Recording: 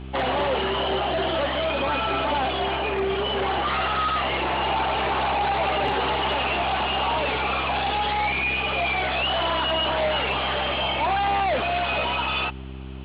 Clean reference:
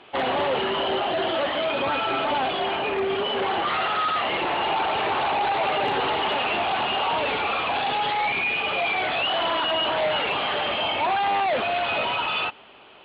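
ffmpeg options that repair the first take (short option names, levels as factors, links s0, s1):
-af "bandreject=f=65.7:t=h:w=4,bandreject=f=131.4:t=h:w=4,bandreject=f=197.1:t=h:w=4,bandreject=f=262.8:t=h:w=4,bandreject=f=328.5:t=h:w=4,bandreject=f=394.2:t=h:w=4"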